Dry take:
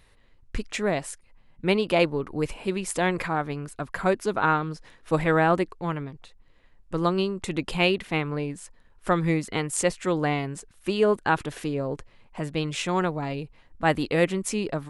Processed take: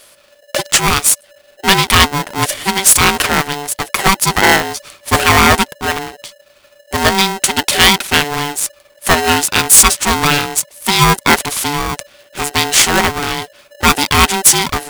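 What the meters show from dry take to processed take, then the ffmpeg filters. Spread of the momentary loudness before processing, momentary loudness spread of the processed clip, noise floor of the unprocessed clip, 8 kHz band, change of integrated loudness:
13 LU, 13 LU, −58 dBFS, +25.5 dB, +14.5 dB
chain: -filter_complex "[0:a]asplit=2[link_01][link_02];[link_02]aeval=exprs='sgn(val(0))*max(abs(val(0))-0.00841,0)':channel_layout=same,volume=-7dB[link_03];[link_01][link_03]amix=inputs=2:normalize=0,crystalizer=i=8:c=0,volume=7.5dB,asoftclip=hard,volume=-7.5dB,aeval=exprs='val(0)*sgn(sin(2*PI*580*n/s))':channel_layout=same,volume=6dB"

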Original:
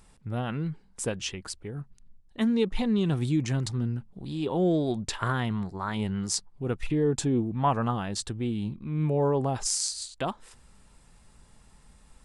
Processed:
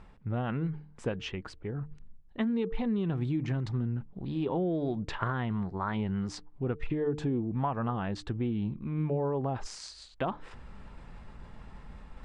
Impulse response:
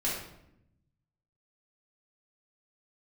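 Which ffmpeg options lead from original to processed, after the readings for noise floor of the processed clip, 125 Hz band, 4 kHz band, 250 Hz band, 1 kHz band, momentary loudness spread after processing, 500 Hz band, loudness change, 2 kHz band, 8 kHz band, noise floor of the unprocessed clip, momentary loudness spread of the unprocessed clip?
−54 dBFS, −3.0 dB, −10.0 dB, −3.5 dB, −4.5 dB, 20 LU, −4.5 dB, −4.0 dB, −3.5 dB, −19.5 dB, −58 dBFS, 11 LU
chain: -af "areverse,acompressor=mode=upward:threshold=-37dB:ratio=2.5,areverse,lowpass=2300,bandreject=frequency=150.3:width_type=h:width=4,bandreject=frequency=300.6:width_type=h:width=4,bandreject=frequency=450.9:width_type=h:width=4,acompressor=threshold=-28dB:ratio=10,volume=1.5dB"

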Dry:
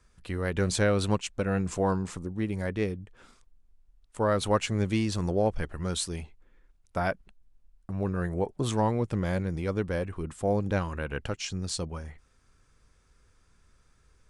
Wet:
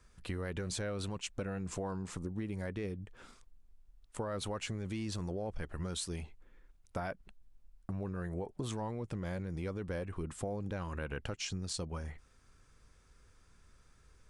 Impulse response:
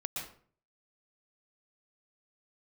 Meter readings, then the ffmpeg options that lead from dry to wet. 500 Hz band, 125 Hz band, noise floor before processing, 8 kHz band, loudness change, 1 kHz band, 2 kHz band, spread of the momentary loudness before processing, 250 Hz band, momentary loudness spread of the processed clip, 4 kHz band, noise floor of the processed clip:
−11.5 dB, −9.0 dB, −65 dBFS, −7.0 dB, −10.0 dB, −12.0 dB, −10.0 dB, 10 LU, −10.0 dB, 7 LU, −7.0 dB, −65 dBFS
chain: -af "alimiter=limit=-21.5dB:level=0:latency=1:release=14,acompressor=threshold=-35dB:ratio=6"

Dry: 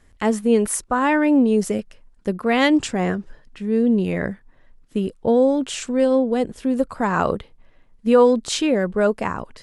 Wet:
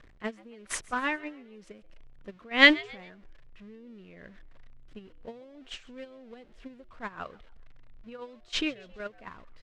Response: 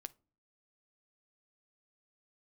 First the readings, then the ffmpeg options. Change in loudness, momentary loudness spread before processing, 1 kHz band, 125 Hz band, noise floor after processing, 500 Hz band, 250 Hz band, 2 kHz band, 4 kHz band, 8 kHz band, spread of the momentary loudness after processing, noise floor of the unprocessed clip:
−6.0 dB, 12 LU, −14.0 dB, −25.0 dB, −56 dBFS, −20.0 dB, −17.5 dB, 0.0 dB, −0.5 dB, below −10 dB, 26 LU, −53 dBFS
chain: -filter_complex "[0:a]aeval=exprs='val(0)+0.5*0.0335*sgn(val(0))':channel_layout=same,tremolo=f=3:d=0.43,asubboost=boost=4:cutoff=53,acrossover=split=1600[link_01][link_02];[link_01]acompressor=threshold=-27dB:ratio=16[link_03];[link_03][link_02]amix=inputs=2:normalize=0,agate=range=-28dB:threshold=-24dB:ratio=16:detection=peak,lowpass=3200,bandreject=frequency=850:width=12,asplit=4[link_04][link_05][link_06][link_07];[link_05]adelay=135,afreqshift=110,volume=-22.5dB[link_08];[link_06]adelay=270,afreqshift=220,volume=-30.7dB[link_09];[link_07]adelay=405,afreqshift=330,volume=-38.9dB[link_10];[link_04][link_08][link_09][link_10]amix=inputs=4:normalize=0,volume=9dB"

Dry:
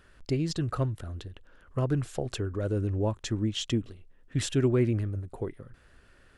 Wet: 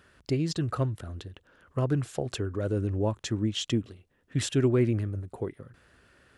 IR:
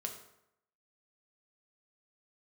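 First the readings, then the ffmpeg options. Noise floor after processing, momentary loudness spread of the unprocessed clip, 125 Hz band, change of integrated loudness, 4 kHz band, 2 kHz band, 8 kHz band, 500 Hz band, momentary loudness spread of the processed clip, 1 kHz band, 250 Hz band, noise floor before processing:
−69 dBFS, 12 LU, 0.0 dB, +0.5 dB, +1.0 dB, +1.0 dB, +1.0 dB, +1.0 dB, 12 LU, +1.0 dB, +1.0 dB, −59 dBFS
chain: -af "highpass=78,volume=1dB"

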